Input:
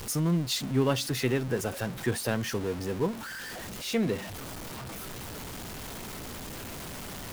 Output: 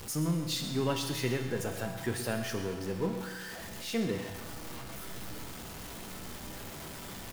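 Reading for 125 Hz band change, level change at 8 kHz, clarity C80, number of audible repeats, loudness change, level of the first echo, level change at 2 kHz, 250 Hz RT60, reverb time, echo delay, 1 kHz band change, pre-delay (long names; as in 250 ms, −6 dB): −4.5 dB, −3.5 dB, 7.0 dB, 1, −4.0 dB, −13.0 dB, −3.5 dB, 1.5 s, 1.5 s, 128 ms, −3.0 dB, 6 ms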